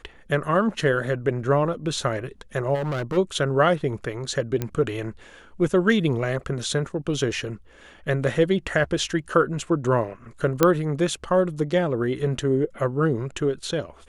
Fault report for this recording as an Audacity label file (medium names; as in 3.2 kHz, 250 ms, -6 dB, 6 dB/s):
2.740000	3.180000	clipped -23.5 dBFS
4.620000	4.620000	pop -12 dBFS
10.630000	10.630000	pop -3 dBFS